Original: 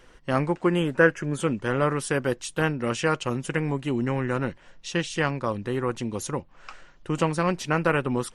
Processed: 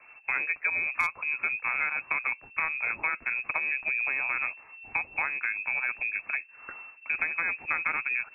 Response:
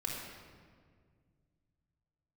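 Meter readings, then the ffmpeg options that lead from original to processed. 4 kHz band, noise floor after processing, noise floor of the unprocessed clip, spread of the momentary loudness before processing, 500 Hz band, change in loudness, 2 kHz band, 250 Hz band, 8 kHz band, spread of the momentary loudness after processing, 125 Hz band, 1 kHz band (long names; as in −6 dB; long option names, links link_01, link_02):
below −25 dB, −54 dBFS, −53 dBFS, 8 LU, −24.5 dB, −2.5 dB, +3.5 dB, −29.0 dB, below −25 dB, 6 LU, below −30 dB, −6.5 dB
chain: -filter_complex "[0:a]lowpass=frequency=2300:width_type=q:width=0.5098,lowpass=frequency=2300:width_type=q:width=0.6013,lowpass=frequency=2300:width_type=q:width=0.9,lowpass=frequency=2300:width_type=q:width=2.563,afreqshift=-2700,volume=8dB,asoftclip=hard,volume=-8dB,acrossover=split=310|690[link_01][link_02][link_03];[link_01]acompressor=threshold=-53dB:ratio=4[link_04];[link_02]acompressor=threshold=-48dB:ratio=4[link_05];[link_03]acompressor=threshold=-26dB:ratio=4[link_06];[link_04][link_05][link_06]amix=inputs=3:normalize=0"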